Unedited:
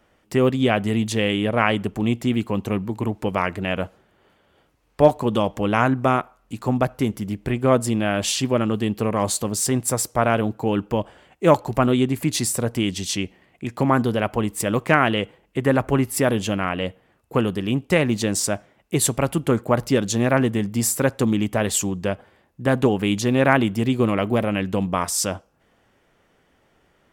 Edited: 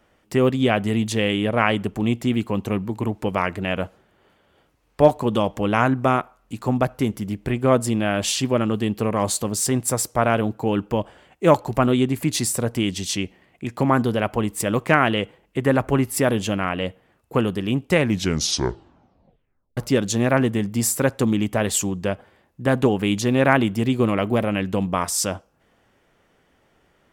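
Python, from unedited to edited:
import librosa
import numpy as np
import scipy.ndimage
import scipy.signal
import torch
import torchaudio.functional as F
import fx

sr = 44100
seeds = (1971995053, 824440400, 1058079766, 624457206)

y = fx.edit(x, sr, fx.tape_stop(start_s=17.96, length_s=1.81), tone=tone)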